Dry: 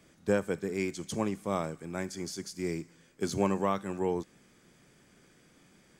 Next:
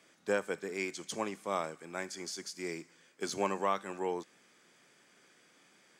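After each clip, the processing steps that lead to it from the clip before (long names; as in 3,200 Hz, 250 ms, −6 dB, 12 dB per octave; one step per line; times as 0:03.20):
meter weighting curve A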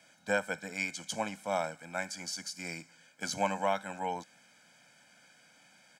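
comb filter 1.3 ms, depth 99%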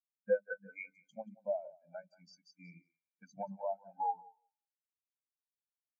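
downward compressor 5 to 1, threshold −38 dBFS, peak gain reduction 13 dB
echo with a time of its own for lows and highs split 320 Hz, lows 105 ms, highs 181 ms, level −5.5 dB
every bin expanded away from the loudest bin 4 to 1
level +5 dB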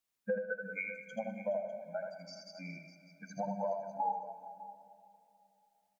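downward compressor 4 to 1, threshold −43 dBFS, peak gain reduction 15.5 dB
multi-tap delay 81/151/202/420/601 ms −4.5/−19/−18/−18.5/−16 dB
dense smooth reverb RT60 3.1 s, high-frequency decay 0.75×, DRR 12 dB
level +9 dB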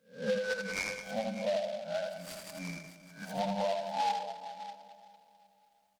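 peak hold with a rise ahead of every peak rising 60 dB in 0.36 s
in parallel at −4 dB: hard clipping −36 dBFS, distortion −8 dB
on the sum: short delay modulated by noise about 3,000 Hz, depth 0.042 ms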